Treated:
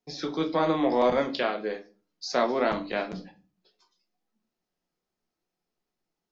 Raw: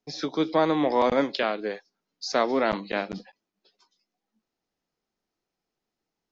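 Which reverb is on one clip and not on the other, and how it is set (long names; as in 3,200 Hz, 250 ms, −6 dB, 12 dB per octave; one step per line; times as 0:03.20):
rectangular room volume 190 cubic metres, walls furnished, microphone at 0.93 metres
level −3 dB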